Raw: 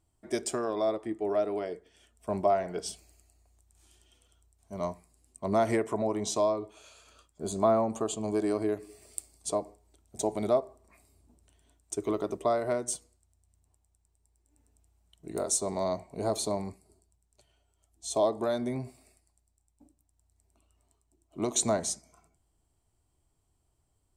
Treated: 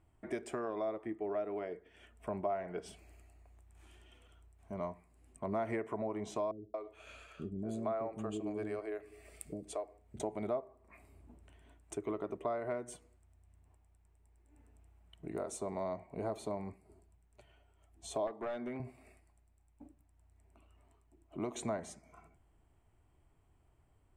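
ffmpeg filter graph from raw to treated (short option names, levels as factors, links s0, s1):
-filter_complex "[0:a]asettb=1/sr,asplit=3[s0][s1][s2];[s0]atrim=end=6.514[s3];[s1]atrim=start=6.51:end=10.2,asetpts=PTS-STARTPTS,afade=t=in:d=0.004:c=qsin,afade=t=out:st=3.686:d=0.004:c=qsin,equalizer=f=950:t=o:w=0.56:g=-7.5,acrossover=split=380[s4][s5];[s5]adelay=230[s6];[s4][s6]amix=inputs=2:normalize=0,atrim=end_sample=162729[s7];[s2]atrim=start=10.196[s8];[s3][s7]acrossfade=d=0.004:c1=hsin:c2=qsin[s9];[s9][s8]acrossfade=d=0.004:c1=qsin:c2=hsin,asettb=1/sr,asplit=3[s10][s11][s12];[s10]atrim=end=18.274[s13];[s11]atrim=start=18.27:end=18.8,asetpts=PTS-STARTPTS,afade=t=in:d=0.004:c=qsin,afade=t=out:st=0.526:d=0.004:c=qsin,highpass=230,lowpass=6400,equalizer=f=380:w=0.66:g=-2.5,aeval=exprs='clip(val(0),-1,0.0282)':c=same[s14];[s12]atrim=start=18.796[s15];[s13][s14]acrossfade=d=0.004:c1=hsin:c2=qsin[s16];[s16][s15]acrossfade=d=0.004:c1=qsin:c2=hsin,highshelf=f=3300:t=q:w=1.5:g=-12,acompressor=threshold=0.00282:ratio=2,volume=1.78"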